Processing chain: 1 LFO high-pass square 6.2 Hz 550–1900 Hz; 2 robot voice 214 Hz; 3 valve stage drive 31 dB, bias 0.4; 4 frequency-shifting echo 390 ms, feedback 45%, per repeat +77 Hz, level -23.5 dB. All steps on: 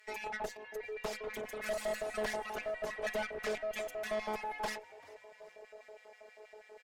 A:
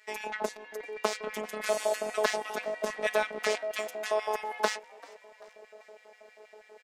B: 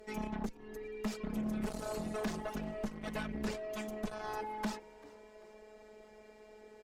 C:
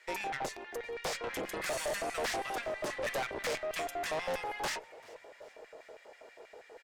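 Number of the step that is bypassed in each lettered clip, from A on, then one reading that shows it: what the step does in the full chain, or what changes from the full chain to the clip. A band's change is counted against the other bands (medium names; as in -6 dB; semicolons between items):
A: 3, crest factor change +16.0 dB; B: 1, 125 Hz band +15.5 dB; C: 2, 500 Hz band -4.0 dB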